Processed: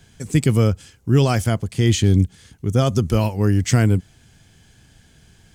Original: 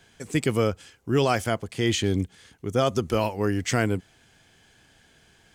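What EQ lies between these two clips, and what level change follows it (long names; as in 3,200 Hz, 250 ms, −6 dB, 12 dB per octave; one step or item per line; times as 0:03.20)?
bass and treble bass +13 dB, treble +6 dB
0.0 dB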